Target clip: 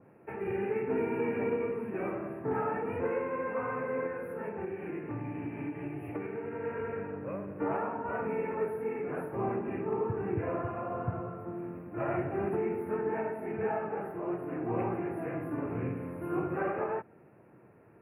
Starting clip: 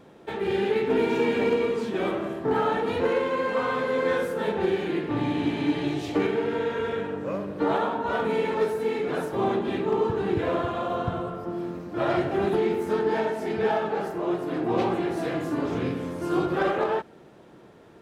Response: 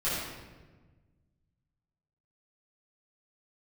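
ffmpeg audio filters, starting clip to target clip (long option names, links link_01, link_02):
-filter_complex "[0:a]highpass=68,equalizer=frequency=110:width_type=o:width=0.67:gain=8,asettb=1/sr,asplit=3[link_01][link_02][link_03];[link_01]atrim=end=4.064[link_04];[link_02]atrim=start=4.06:end=6.64,asetpts=PTS-STARTPTS,afade=type=in:duration=0.004:curve=qsin,afade=type=out:start_time=2.576:duration=0.004:curve=qsin,acompressor=threshold=-26dB:ratio=6[link_05];[link_03]atrim=start=6.636[link_06];[link_04][link_05]acrossfade=duration=0.004:curve1=hsin:curve2=qsin[link_07];[link_07][link_06]acrossfade=duration=0.004:curve1=qsin:curve2=hsin,asuperstop=centerf=5300:order=20:qfactor=0.76,adynamicequalizer=threshold=0.0126:dfrequency=2100:dqfactor=0.7:tfrequency=2100:tqfactor=0.7:attack=5:release=100:ratio=0.375:range=2:mode=cutabove:tftype=highshelf,volume=-8dB"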